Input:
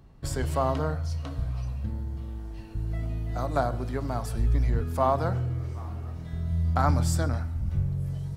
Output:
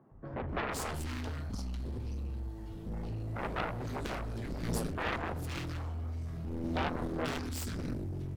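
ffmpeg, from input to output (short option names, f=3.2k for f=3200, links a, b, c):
-filter_complex "[0:a]volume=24dB,asoftclip=hard,volume=-24dB,flanger=delay=8.2:depth=4.9:regen=-57:speed=1.6:shape=sinusoidal,acrossover=split=160|1600[a][b][c];[a]adelay=110[d];[c]adelay=490[e];[d][b][e]amix=inputs=3:normalize=0,aeval=exprs='0.106*(cos(1*acos(clip(val(0)/0.106,-1,1)))-cos(1*PI/2))+0.0531*(cos(7*acos(clip(val(0)/0.106,-1,1)))-cos(7*PI/2))':c=same,volume=-4.5dB"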